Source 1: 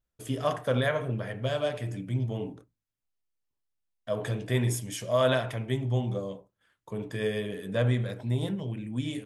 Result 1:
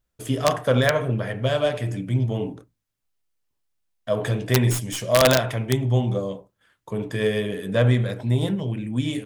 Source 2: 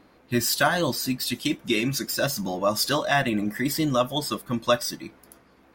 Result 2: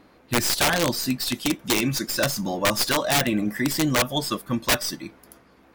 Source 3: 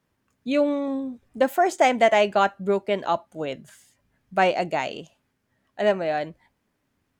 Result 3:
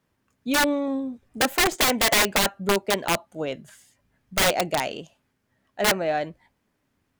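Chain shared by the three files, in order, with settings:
stylus tracing distortion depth 0.038 ms
wrap-around overflow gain 15 dB
loudness normalisation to −23 LKFS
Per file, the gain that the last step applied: +7.0, +2.0, +0.5 decibels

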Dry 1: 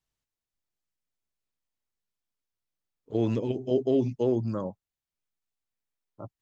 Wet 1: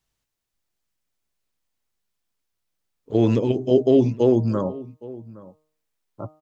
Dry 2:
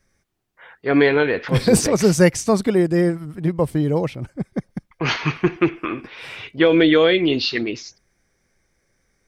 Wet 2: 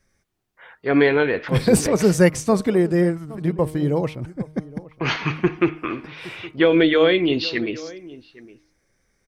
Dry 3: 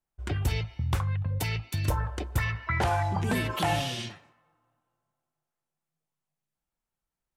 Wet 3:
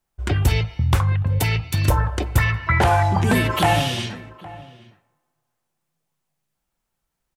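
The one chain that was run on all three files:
hum removal 154.5 Hz, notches 9
dynamic equaliser 5,400 Hz, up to −4 dB, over −42 dBFS, Q 1.2
slap from a distant wall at 140 metres, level −19 dB
loudness normalisation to −20 LKFS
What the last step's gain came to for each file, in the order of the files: +8.5, −1.0, +10.0 decibels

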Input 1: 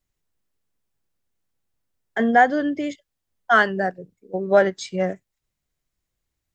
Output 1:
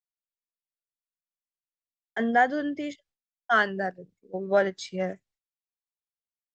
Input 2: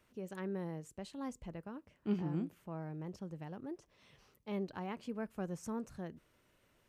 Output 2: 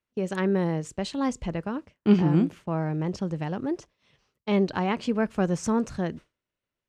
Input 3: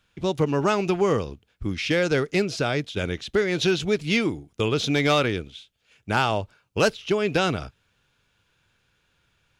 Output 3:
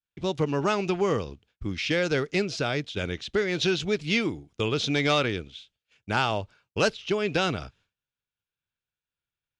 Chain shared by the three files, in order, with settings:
high-shelf EQ 3,400 Hz +9 dB
downward expander −50 dBFS
high-frequency loss of the air 93 metres
loudness normalisation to −27 LKFS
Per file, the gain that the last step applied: −6.5, +15.5, −3.5 decibels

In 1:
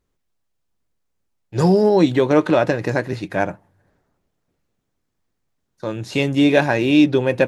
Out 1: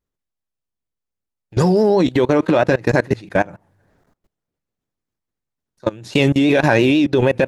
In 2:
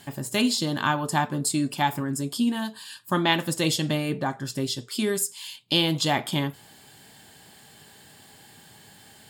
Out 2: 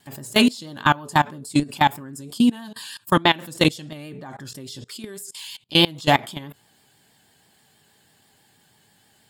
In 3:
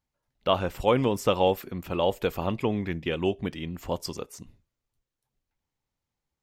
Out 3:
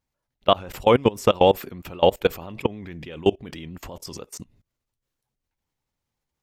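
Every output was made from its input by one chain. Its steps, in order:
brickwall limiter −10.5 dBFS
output level in coarse steps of 23 dB
pitch vibrato 6.2 Hz 57 cents
normalise the peak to −1.5 dBFS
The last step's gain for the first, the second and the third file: +9.5, +9.0, +9.5 decibels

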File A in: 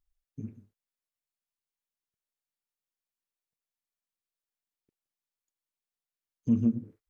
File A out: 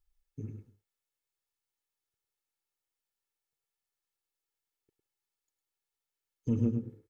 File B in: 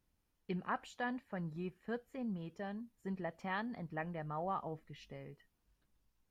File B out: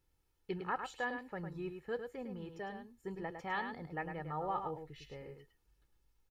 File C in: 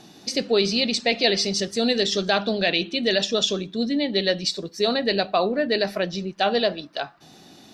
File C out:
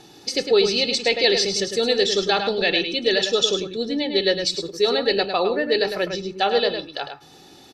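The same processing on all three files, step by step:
comb filter 2.3 ms, depth 57%
slap from a distant wall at 18 metres, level −7 dB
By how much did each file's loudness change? −4.5, +1.0, +2.0 LU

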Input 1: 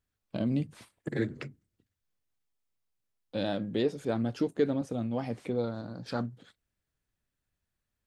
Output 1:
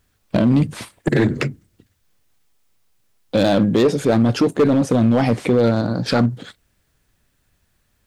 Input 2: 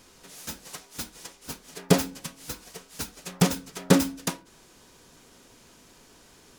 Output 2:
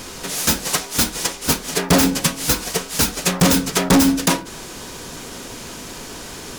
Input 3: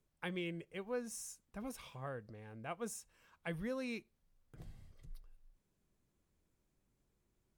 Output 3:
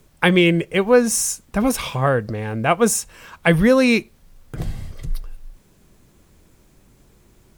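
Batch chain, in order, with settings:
in parallel at −2.5 dB: compressor whose output falls as the input rises −33 dBFS, ratio −0.5
on the sum: gain into a clipping stage and back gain 22.5 dB
loudness normalisation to −18 LKFS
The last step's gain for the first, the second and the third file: +13.0, +12.5, +21.5 decibels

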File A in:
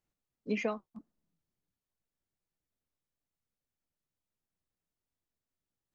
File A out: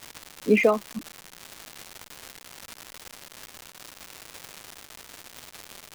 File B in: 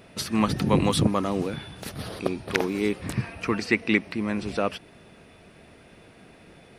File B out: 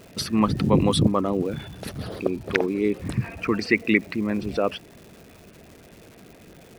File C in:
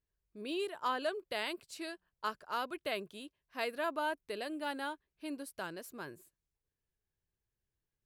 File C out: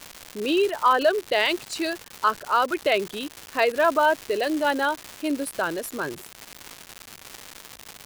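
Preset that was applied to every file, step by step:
spectral envelope exaggerated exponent 1.5
surface crackle 340 per second −41 dBFS
loudness normalisation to −24 LKFS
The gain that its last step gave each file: +14.0, +2.5, +15.5 decibels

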